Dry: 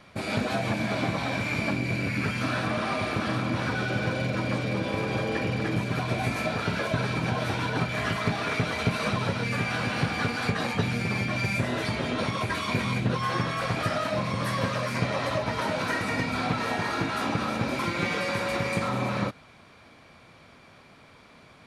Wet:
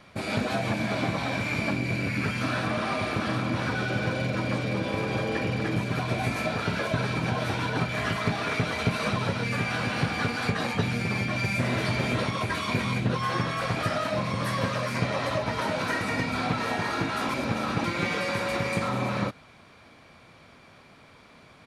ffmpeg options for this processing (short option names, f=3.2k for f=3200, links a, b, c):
-filter_complex "[0:a]asplit=2[a][b];[b]afade=t=in:st=11.03:d=0.01,afade=t=out:st=11.68:d=0.01,aecho=0:1:550|1100|1650:0.630957|0.0946436|0.0141965[c];[a][c]amix=inputs=2:normalize=0,asplit=3[d][e][f];[d]atrim=end=17.292[g];[e]atrim=start=17.288:end=17.842,asetpts=PTS-STARTPTS,areverse[h];[f]atrim=start=17.838[i];[g][h]acrossfade=d=0.004:c1=hsin:c2=hsin[j];[j][i]acrossfade=d=0.004:c1=hsin:c2=hsin"